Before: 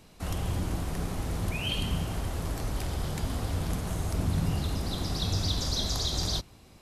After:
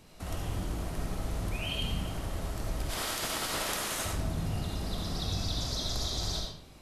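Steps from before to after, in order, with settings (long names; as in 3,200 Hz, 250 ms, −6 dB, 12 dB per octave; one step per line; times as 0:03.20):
0:02.89–0:04.04: ceiling on every frequency bin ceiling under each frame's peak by 30 dB
in parallel at +1 dB: downward compressor, threshold −40 dBFS, peak gain reduction 16 dB
on the sum: convolution reverb RT60 0.65 s, pre-delay 30 ms, DRR 0 dB
level −8 dB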